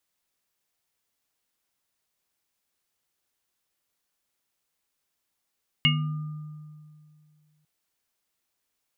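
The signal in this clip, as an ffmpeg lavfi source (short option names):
-f lavfi -i "aevalsrc='0.0891*pow(10,-3*t/2.34)*sin(2*PI*152*t)+0.0355*pow(10,-3*t/0.88)*sin(2*PI*244*t)+0.0168*pow(10,-3*t/1.59)*sin(2*PI*1210*t)+0.1*pow(10,-3*t/0.21)*sin(2*PI*2180*t)+0.178*pow(10,-3*t/0.26)*sin(2*PI*2850*t)':d=1.8:s=44100"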